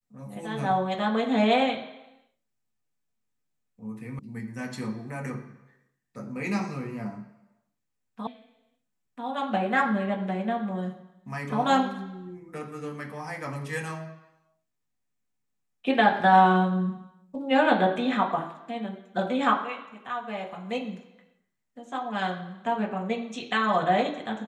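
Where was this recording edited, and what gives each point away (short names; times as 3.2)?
4.19 sound cut off
8.27 sound cut off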